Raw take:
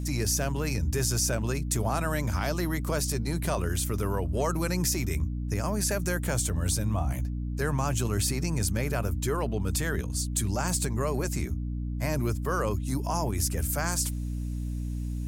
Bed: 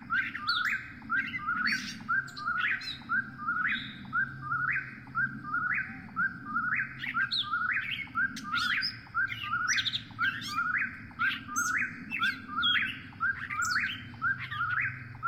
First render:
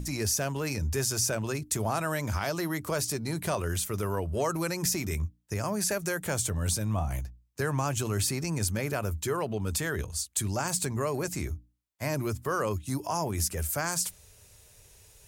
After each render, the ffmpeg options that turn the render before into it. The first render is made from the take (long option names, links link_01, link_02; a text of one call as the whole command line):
ffmpeg -i in.wav -af "bandreject=frequency=60:width_type=h:width=6,bandreject=frequency=120:width_type=h:width=6,bandreject=frequency=180:width_type=h:width=6,bandreject=frequency=240:width_type=h:width=6,bandreject=frequency=300:width_type=h:width=6" out.wav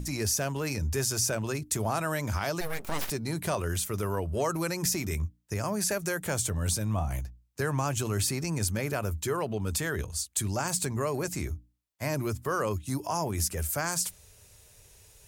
ffmpeg -i in.wav -filter_complex "[0:a]asplit=3[link_01][link_02][link_03];[link_01]afade=type=out:start_time=2.6:duration=0.02[link_04];[link_02]aeval=exprs='abs(val(0))':channel_layout=same,afade=type=in:start_time=2.6:duration=0.02,afade=type=out:start_time=3.09:duration=0.02[link_05];[link_03]afade=type=in:start_time=3.09:duration=0.02[link_06];[link_04][link_05][link_06]amix=inputs=3:normalize=0" out.wav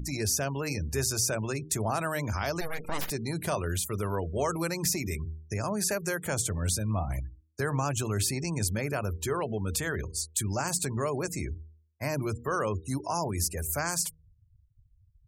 ffmpeg -i in.wav -af "afftfilt=real='re*gte(hypot(re,im),0.00794)':imag='im*gte(hypot(re,im),0.00794)':win_size=1024:overlap=0.75,bandreject=frequency=78.52:width_type=h:width=4,bandreject=frequency=157.04:width_type=h:width=4,bandreject=frequency=235.56:width_type=h:width=4,bandreject=frequency=314.08:width_type=h:width=4,bandreject=frequency=392.6:width_type=h:width=4,bandreject=frequency=471.12:width_type=h:width=4" out.wav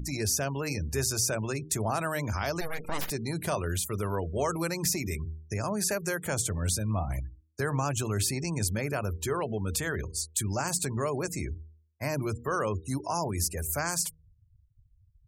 ffmpeg -i in.wav -af anull out.wav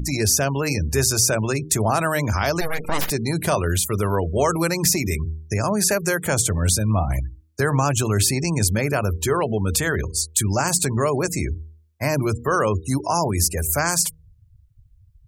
ffmpeg -i in.wav -af "volume=9.5dB" out.wav